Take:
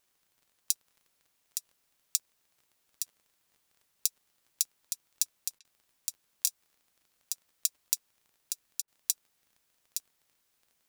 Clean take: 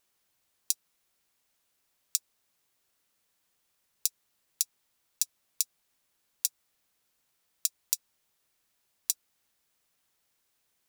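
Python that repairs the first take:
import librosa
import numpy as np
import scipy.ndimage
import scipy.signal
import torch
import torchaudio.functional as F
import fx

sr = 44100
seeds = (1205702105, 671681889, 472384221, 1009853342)

y = fx.fix_declick_ar(x, sr, threshold=6.5)
y = fx.fix_interpolate(y, sr, at_s=(5.59, 8.82), length_ms=57.0)
y = fx.fix_echo_inverse(y, sr, delay_ms=866, level_db=-6.5)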